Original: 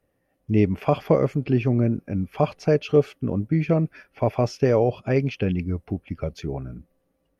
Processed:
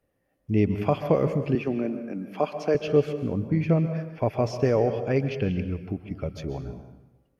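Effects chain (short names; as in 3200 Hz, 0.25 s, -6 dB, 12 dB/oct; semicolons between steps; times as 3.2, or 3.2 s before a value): 1.55–2.75 HPF 220 Hz 24 dB/oct; plate-style reverb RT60 1 s, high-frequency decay 0.85×, pre-delay 0.115 s, DRR 9 dB; gain -3 dB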